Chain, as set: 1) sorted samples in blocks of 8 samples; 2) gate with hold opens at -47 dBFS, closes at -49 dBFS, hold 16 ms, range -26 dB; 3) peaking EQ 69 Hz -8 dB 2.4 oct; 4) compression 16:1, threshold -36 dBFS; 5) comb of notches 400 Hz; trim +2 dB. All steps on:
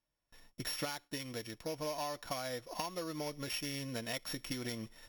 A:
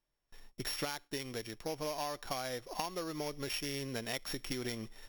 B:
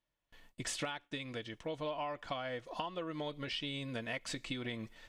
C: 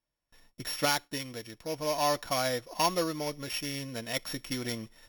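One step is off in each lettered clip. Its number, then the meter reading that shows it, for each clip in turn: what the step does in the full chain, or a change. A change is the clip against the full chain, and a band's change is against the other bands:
5, loudness change +1.0 LU; 1, distortion -5 dB; 4, mean gain reduction 5.0 dB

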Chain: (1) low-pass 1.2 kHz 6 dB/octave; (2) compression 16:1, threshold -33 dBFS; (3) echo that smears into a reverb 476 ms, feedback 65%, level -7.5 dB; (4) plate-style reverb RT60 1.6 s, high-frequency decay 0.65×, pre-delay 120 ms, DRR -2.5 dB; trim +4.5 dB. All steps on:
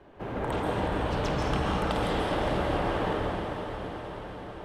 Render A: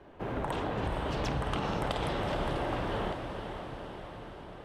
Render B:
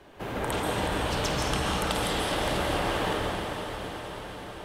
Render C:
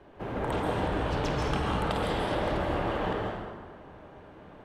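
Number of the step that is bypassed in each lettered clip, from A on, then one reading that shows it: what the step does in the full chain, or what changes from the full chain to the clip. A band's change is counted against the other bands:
4, echo-to-direct 4.0 dB to -5.0 dB; 1, 8 kHz band +13.5 dB; 3, echo-to-direct 4.0 dB to 2.5 dB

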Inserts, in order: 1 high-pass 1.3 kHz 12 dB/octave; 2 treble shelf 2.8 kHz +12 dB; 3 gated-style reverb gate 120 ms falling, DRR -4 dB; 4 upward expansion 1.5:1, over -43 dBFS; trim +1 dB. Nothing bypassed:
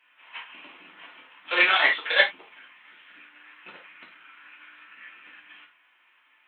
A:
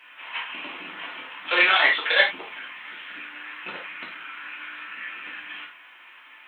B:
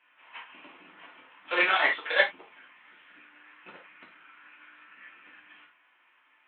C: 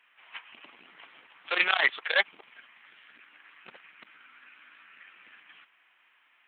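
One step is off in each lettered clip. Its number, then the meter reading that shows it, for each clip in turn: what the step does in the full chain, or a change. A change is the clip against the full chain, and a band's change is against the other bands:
4, momentary loudness spread change +9 LU; 2, 4 kHz band -6.0 dB; 3, momentary loudness spread change +10 LU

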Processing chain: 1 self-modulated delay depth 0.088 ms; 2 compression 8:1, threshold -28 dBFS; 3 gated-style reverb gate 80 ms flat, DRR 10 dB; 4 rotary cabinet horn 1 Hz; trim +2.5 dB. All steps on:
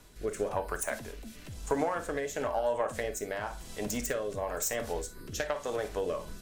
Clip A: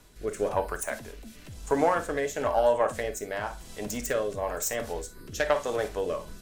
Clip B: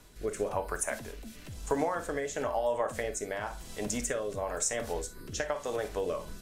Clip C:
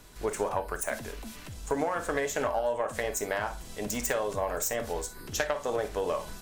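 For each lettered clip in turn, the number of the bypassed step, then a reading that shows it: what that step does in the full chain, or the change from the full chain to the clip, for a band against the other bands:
2, mean gain reduction 2.5 dB; 1, 8 kHz band +2.5 dB; 4, 250 Hz band -2.0 dB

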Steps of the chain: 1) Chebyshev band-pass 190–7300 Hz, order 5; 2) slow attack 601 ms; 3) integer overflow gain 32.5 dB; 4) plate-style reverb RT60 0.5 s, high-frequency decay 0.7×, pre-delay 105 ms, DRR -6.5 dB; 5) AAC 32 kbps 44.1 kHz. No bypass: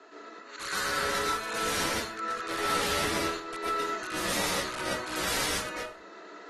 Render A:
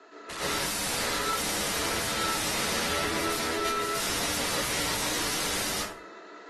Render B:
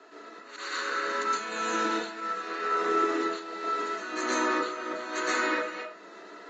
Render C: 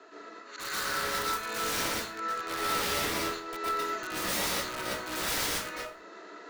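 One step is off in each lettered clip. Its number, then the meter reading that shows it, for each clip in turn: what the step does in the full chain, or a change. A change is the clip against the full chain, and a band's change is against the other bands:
2, crest factor change -2.5 dB; 3, 8 kHz band -8.5 dB; 5, 8 kHz band +1.5 dB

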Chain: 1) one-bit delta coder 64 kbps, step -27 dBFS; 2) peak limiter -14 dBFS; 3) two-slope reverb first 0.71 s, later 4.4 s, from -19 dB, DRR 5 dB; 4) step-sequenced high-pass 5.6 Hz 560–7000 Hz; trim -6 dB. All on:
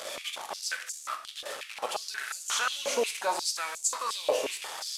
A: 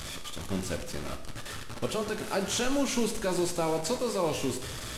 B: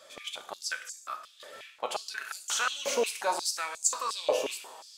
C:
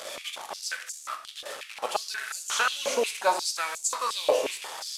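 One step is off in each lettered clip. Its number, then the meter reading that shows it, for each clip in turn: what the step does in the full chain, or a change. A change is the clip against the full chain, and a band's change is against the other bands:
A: 4, 250 Hz band +21.5 dB; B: 1, 4 kHz band -2.0 dB; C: 2, momentary loudness spread change +3 LU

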